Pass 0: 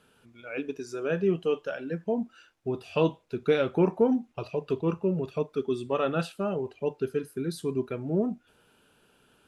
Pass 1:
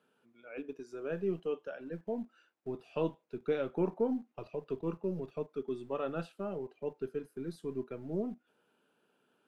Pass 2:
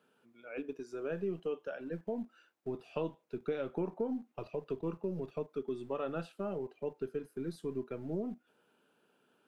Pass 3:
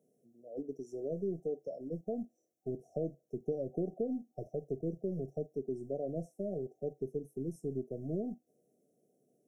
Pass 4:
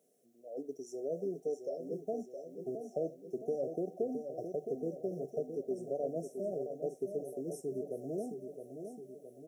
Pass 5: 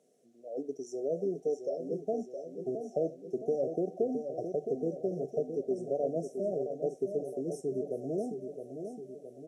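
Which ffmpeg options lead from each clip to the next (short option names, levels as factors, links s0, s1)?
-filter_complex "[0:a]acrossover=split=160[s0][s1];[s0]acrusher=bits=6:dc=4:mix=0:aa=0.000001[s2];[s2][s1]amix=inputs=2:normalize=0,highshelf=f=2400:g=-9.5,volume=0.398"
-af "acompressor=threshold=0.0178:ratio=3,volume=1.26"
-af "afftfilt=real='re*(1-between(b*sr/4096,760,5300))':imag='im*(1-between(b*sr/4096,760,5300))':win_size=4096:overlap=0.75,equalizer=f=140:w=4.7:g=6.5"
-filter_complex "[0:a]highpass=f=1100:p=1,asplit=2[s0][s1];[s1]aecho=0:1:666|1332|1998|2664|3330|3996|4662:0.422|0.236|0.132|0.0741|0.0415|0.0232|0.013[s2];[s0][s2]amix=inputs=2:normalize=0,volume=2.82"
-af "lowpass=7500,volume=1.68"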